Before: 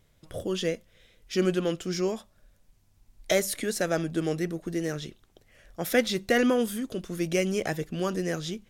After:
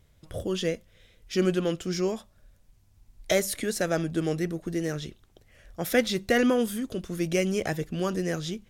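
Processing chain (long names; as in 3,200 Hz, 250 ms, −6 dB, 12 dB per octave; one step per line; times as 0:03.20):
parametric band 64 Hz +7 dB 1.7 octaves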